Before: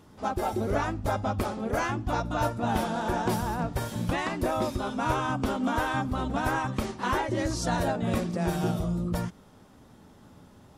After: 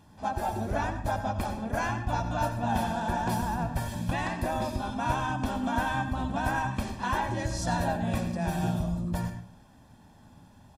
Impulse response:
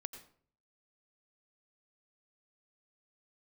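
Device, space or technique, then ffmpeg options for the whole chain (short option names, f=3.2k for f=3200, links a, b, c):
microphone above a desk: -filter_complex "[0:a]aecho=1:1:1.2:0.59[a];[1:a]atrim=start_sample=2205[b];[a][b]afir=irnorm=-1:irlink=0"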